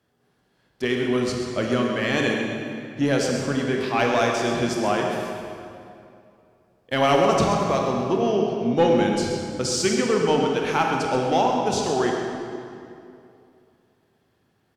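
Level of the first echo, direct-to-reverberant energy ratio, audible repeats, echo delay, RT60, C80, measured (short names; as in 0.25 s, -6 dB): -9.0 dB, 0.0 dB, 1, 0.131 s, 2.6 s, 2.0 dB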